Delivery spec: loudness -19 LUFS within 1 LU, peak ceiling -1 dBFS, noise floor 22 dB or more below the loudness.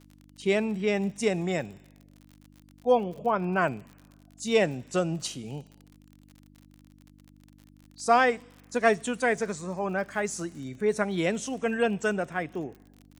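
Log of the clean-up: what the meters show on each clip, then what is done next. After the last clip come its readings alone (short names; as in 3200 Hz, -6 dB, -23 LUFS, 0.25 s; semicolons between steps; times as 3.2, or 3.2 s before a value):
ticks 48/s; hum 50 Hz; harmonics up to 300 Hz; hum level -56 dBFS; loudness -28.0 LUFS; peak -7.5 dBFS; loudness target -19.0 LUFS
-> de-click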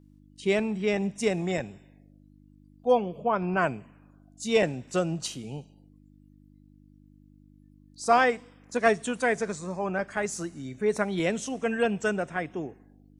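ticks 0.076/s; hum 50 Hz; harmonics up to 300 Hz; hum level -56 dBFS
-> de-hum 50 Hz, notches 6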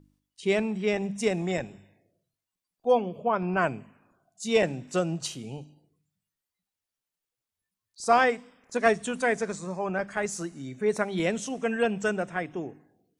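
hum none; loudness -28.0 LUFS; peak -7.5 dBFS; loudness target -19.0 LUFS
-> gain +9 dB; limiter -1 dBFS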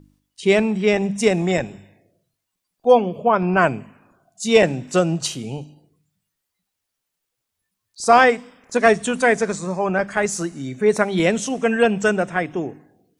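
loudness -19.0 LUFS; peak -1.0 dBFS; noise floor -80 dBFS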